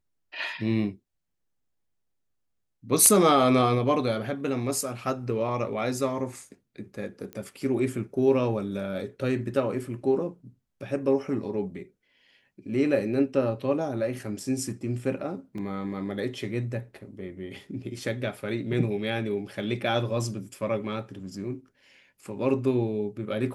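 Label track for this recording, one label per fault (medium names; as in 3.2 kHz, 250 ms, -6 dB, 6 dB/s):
7.330000	7.330000	pop -24 dBFS
15.580000	15.580000	dropout 2.6 ms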